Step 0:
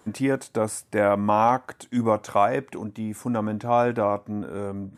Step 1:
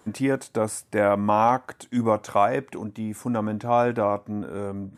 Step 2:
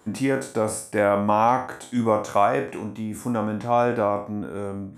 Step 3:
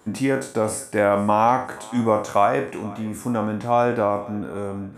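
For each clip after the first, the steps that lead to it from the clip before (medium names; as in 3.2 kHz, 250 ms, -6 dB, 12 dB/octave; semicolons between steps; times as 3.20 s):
no audible change
spectral sustain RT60 0.42 s
thinning echo 483 ms, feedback 55%, level -20.5 dB; trim +1.5 dB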